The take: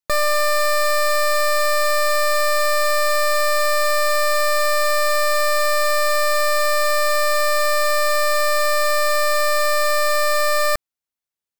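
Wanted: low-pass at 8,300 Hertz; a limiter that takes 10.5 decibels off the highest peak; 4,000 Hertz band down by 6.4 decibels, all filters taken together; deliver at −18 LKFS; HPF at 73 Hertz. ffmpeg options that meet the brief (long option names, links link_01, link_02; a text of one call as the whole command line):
ffmpeg -i in.wav -af "highpass=73,lowpass=8300,equalizer=frequency=4000:width_type=o:gain=-7.5,volume=11.5dB,alimiter=limit=-11dB:level=0:latency=1" out.wav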